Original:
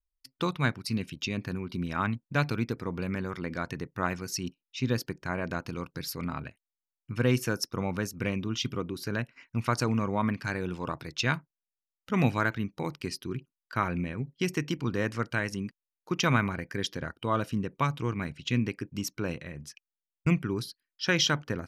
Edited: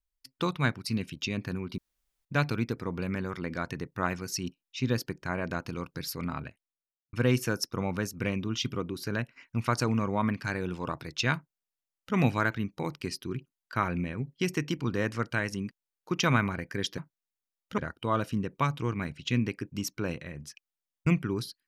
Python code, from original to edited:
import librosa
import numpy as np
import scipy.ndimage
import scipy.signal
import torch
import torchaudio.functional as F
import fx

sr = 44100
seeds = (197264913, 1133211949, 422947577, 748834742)

y = fx.studio_fade_out(x, sr, start_s=6.39, length_s=0.74)
y = fx.edit(y, sr, fx.room_tone_fill(start_s=1.78, length_s=0.47),
    fx.duplicate(start_s=11.35, length_s=0.8, to_s=16.98), tone=tone)